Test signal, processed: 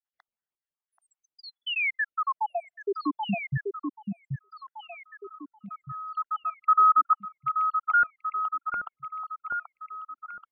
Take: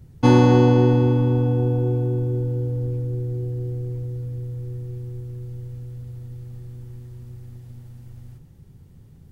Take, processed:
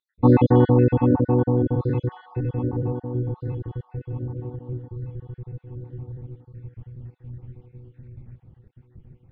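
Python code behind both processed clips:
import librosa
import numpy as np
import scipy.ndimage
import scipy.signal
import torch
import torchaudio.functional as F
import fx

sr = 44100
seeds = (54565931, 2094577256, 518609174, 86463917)

y = fx.spec_dropout(x, sr, seeds[0], share_pct=68)
y = scipy.signal.sosfilt(scipy.signal.butter(4, 2700.0, 'lowpass', fs=sr, output='sos'), y)
y = fx.echo_alternate(y, sr, ms=782, hz=1200.0, feedback_pct=55, wet_db=-4)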